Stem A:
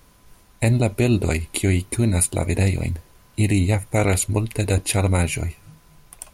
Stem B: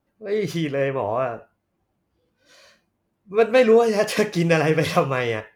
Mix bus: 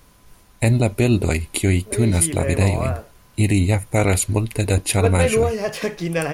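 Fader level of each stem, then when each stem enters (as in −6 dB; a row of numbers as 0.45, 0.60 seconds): +1.5, −4.0 decibels; 0.00, 1.65 seconds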